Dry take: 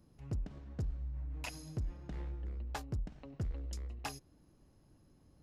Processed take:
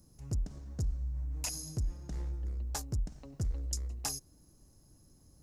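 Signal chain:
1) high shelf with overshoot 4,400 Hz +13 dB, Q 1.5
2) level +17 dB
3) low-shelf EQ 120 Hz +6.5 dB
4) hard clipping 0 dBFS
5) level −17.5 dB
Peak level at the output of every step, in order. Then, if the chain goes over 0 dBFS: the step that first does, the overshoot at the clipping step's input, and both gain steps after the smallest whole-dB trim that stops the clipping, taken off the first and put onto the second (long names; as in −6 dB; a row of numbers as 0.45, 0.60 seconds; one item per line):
−21.0, −4.0, −3.0, −3.0, −20.5 dBFS
no step passes full scale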